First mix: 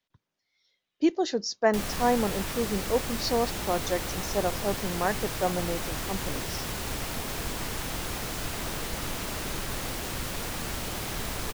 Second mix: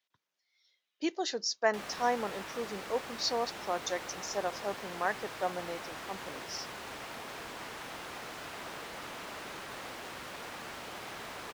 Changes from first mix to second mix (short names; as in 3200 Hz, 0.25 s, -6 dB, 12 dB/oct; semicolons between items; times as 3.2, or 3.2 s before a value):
background: add LPF 1400 Hz 6 dB/oct; master: add HPF 1000 Hz 6 dB/oct